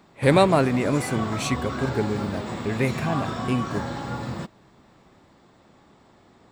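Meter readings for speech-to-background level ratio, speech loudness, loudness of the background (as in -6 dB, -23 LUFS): 6.5 dB, -24.5 LUFS, -31.0 LUFS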